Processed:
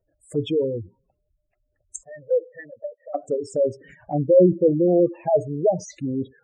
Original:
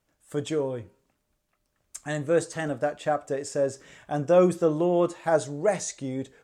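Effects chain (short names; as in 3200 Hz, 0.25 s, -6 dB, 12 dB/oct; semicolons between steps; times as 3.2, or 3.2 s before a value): 2.03–3.14 vocal tract filter e; spectral gate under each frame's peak -10 dB strong; envelope phaser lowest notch 200 Hz, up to 1400 Hz, full sweep at -29 dBFS; gain +7 dB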